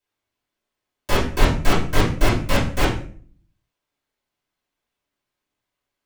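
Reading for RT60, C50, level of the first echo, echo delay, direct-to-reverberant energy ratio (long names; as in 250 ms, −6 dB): 0.45 s, 5.5 dB, no echo audible, no echo audible, −12.5 dB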